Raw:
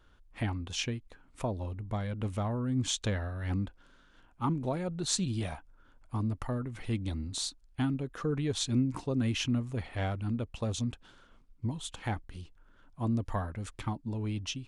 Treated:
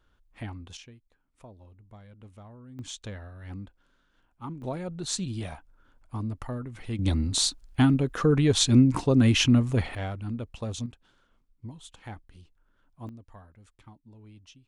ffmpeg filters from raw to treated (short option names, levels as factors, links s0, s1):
-af "asetnsamples=n=441:p=0,asendcmd='0.77 volume volume -15.5dB;2.79 volume volume -7.5dB;4.62 volume volume -0.5dB;6.99 volume volume 10dB;9.95 volume volume -0.5dB;10.86 volume volume -7.5dB;13.09 volume volume -16.5dB',volume=0.562"